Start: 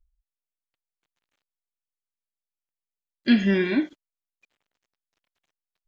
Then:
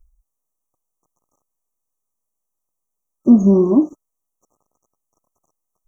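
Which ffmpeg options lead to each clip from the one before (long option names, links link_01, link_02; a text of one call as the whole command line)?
ffmpeg -i in.wav -filter_complex "[0:a]asplit=2[link_01][link_02];[link_02]acompressor=threshold=-27dB:ratio=6,volume=2.5dB[link_03];[link_01][link_03]amix=inputs=2:normalize=0,afftfilt=real='re*(1-between(b*sr/4096,1300,5600))':imag='im*(1-between(b*sr/4096,1300,5600))':win_size=4096:overlap=0.75,volume=6dB" out.wav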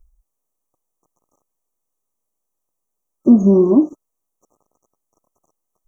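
ffmpeg -i in.wav -filter_complex "[0:a]equalizer=frequency=410:width=0.63:gain=4.5,asplit=2[link_01][link_02];[link_02]acompressor=threshold=-16dB:ratio=6,volume=0dB[link_03];[link_01][link_03]amix=inputs=2:normalize=0,volume=-5dB" out.wav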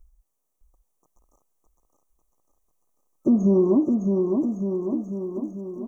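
ffmpeg -i in.wav -filter_complex "[0:a]alimiter=limit=-11.5dB:level=0:latency=1:release=328,asplit=2[link_01][link_02];[link_02]aecho=0:1:610|1159|1653|2098|2498:0.631|0.398|0.251|0.158|0.1[link_03];[link_01][link_03]amix=inputs=2:normalize=0" out.wav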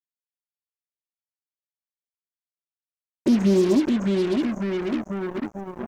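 ffmpeg -i in.wav -af "acrusher=bits=4:mix=0:aa=0.5" out.wav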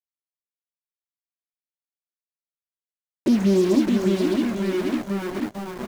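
ffmpeg -i in.wav -filter_complex "[0:a]aeval=exprs='val(0)*gte(abs(val(0)),0.0224)':channel_layout=same,asplit=2[link_01][link_02];[link_02]aecho=0:1:474|948|1422:0.473|0.0852|0.0153[link_03];[link_01][link_03]amix=inputs=2:normalize=0" out.wav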